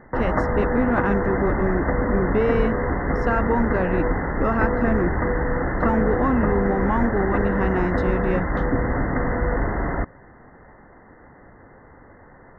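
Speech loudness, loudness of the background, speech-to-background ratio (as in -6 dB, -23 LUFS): -25.0 LUFS, -24.0 LUFS, -1.0 dB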